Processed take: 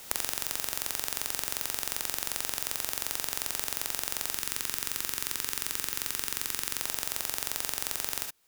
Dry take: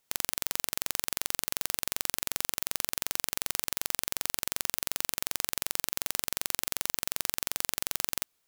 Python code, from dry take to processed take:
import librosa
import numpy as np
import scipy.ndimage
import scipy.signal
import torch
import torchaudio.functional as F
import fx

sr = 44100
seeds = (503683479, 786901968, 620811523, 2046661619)

y = fx.peak_eq(x, sr, hz=670.0, db=-12.0, octaves=0.71, at=(4.34, 6.8))
y = fx.rev_gated(y, sr, seeds[0], gate_ms=90, shape='rising', drr_db=3.5)
y = fx.band_squash(y, sr, depth_pct=100)
y = F.gain(torch.from_numpy(y), -1.5).numpy()